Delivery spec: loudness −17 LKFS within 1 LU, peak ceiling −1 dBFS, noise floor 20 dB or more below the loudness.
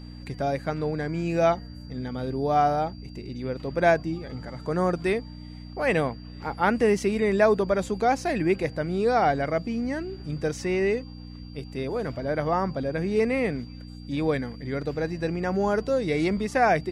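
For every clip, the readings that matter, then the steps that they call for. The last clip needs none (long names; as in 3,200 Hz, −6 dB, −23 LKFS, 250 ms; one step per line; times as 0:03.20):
mains hum 60 Hz; hum harmonics up to 300 Hz; level of the hum −38 dBFS; interfering tone 4,700 Hz; level of the tone −52 dBFS; integrated loudness −26.0 LKFS; sample peak −9.0 dBFS; target loudness −17.0 LKFS
→ hum removal 60 Hz, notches 5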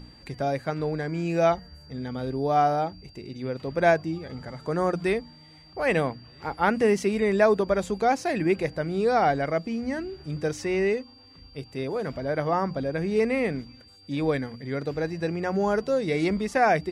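mains hum none found; interfering tone 4,700 Hz; level of the tone −52 dBFS
→ notch filter 4,700 Hz, Q 30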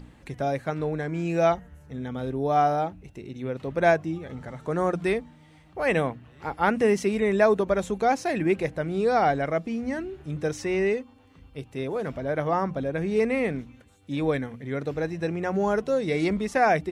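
interfering tone none found; integrated loudness −26.0 LKFS; sample peak −9.0 dBFS; target loudness −17.0 LKFS
→ level +9 dB
brickwall limiter −1 dBFS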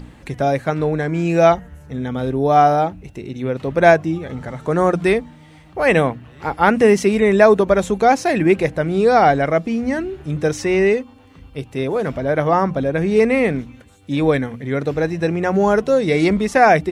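integrated loudness −17.0 LKFS; sample peak −1.0 dBFS; background noise floor −45 dBFS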